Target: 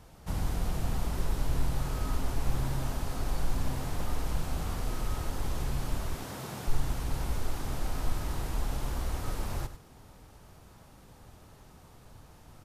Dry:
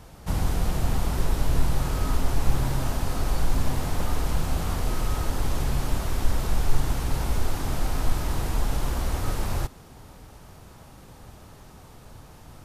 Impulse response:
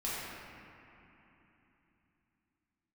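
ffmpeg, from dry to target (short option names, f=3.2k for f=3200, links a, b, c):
-filter_complex "[0:a]asettb=1/sr,asplit=3[a][b][c];[a]atrim=end=6.144[d];[b]atrim=start=6.14:end=6.68,asetpts=PTS-STARTPTS,afade=t=in:d=0.004:c=qsin,afade=t=out:st=0.536:d=0.004:c=qsin,highpass=f=110:w=0.5412,highpass=f=110:w=1.3066[e];[c]atrim=start=6.676[f];[d][e]acrossfade=d=0.004:c1=hsin:c2=qsin[g];[g][f]acrossfade=d=0.004:c1=qsin:c2=hsin,asplit=2[h][i];[i]aecho=0:1:98:0.251[j];[h][j]amix=inputs=2:normalize=0,volume=-7dB"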